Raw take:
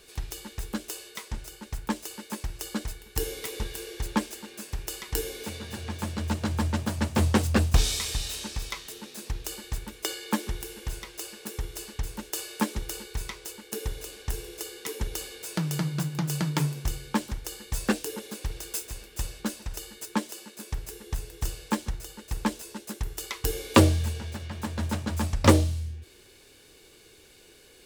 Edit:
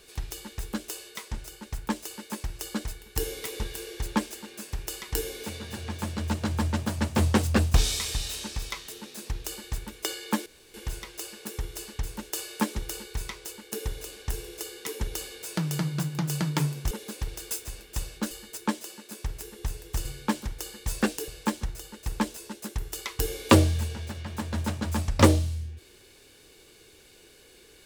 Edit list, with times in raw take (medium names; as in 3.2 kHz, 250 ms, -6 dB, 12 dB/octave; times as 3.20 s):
10.46–10.74 s: room tone
16.91–18.14 s: move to 21.53 s
19.54–19.79 s: delete